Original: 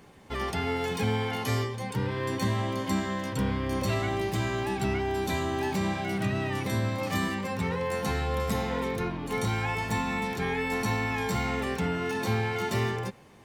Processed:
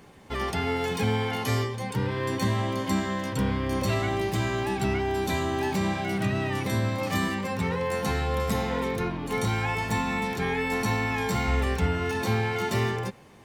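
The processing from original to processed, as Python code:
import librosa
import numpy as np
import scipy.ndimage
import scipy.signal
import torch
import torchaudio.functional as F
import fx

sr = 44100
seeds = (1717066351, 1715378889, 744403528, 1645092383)

y = fx.low_shelf_res(x, sr, hz=110.0, db=9.5, q=1.5, at=(11.47, 12.22))
y = y * 10.0 ** (2.0 / 20.0)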